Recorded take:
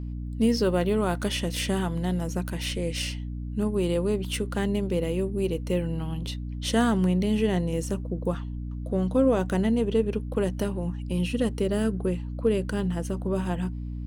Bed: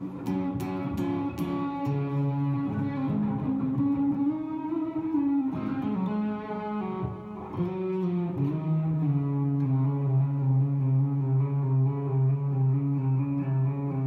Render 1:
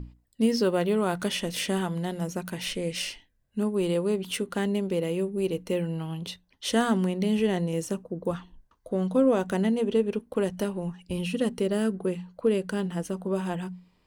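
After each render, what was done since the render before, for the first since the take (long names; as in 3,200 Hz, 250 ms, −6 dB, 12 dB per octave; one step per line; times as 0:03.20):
mains-hum notches 60/120/180/240/300 Hz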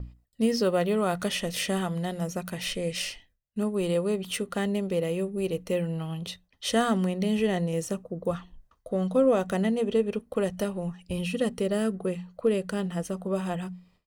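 noise gate with hold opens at −53 dBFS
comb filter 1.6 ms, depth 35%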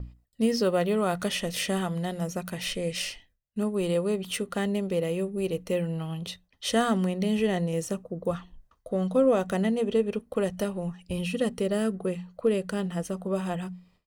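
no processing that can be heard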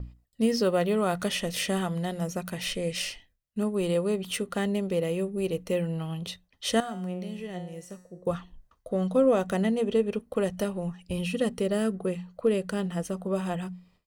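0:06.80–0:08.27: tuned comb filter 180 Hz, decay 0.6 s, mix 80%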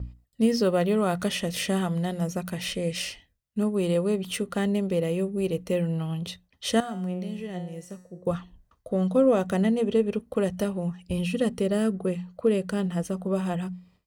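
high-pass filter 44 Hz
low-shelf EQ 270 Hz +5 dB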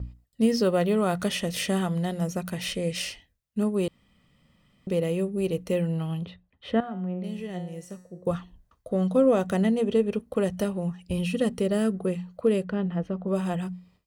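0:03.88–0:04.87: fill with room tone
0:06.25–0:07.24: high-frequency loss of the air 480 metres
0:12.64–0:13.28: high-frequency loss of the air 340 metres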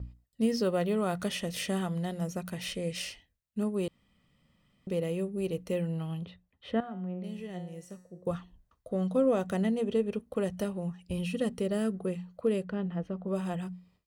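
level −5.5 dB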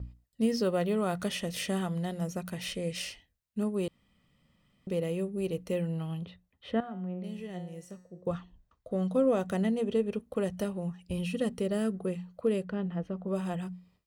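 0:07.91–0:08.91: parametric band 12,000 Hz −12.5 dB 0.72 octaves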